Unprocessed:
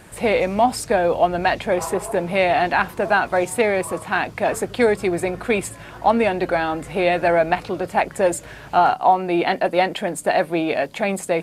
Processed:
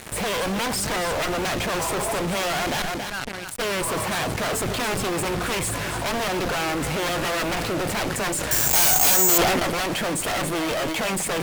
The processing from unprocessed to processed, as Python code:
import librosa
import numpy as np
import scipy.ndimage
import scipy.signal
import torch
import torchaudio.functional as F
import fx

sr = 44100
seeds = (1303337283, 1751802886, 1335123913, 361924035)

y = fx.tone_stack(x, sr, knobs='6-0-2', at=(2.81, 3.59), fade=0.02)
y = fx.cheby_harmonics(y, sr, harmonics=(6, 7), levels_db=(-14, -10), full_scale_db=-2.0)
y = fx.fuzz(y, sr, gain_db=42.0, gate_db=-40.0)
y = y + 10.0 ** (-11.0 / 20.0) * np.pad(y, (int(279 * sr / 1000.0), 0))[:len(y)]
y = fx.resample_bad(y, sr, factor=6, down='none', up='zero_stuff', at=(8.51, 9.38))
y = fx.sustainer(y, sr, db_per_s=23.0)
y = y * 10.0 ** (-11.0 / 20.0)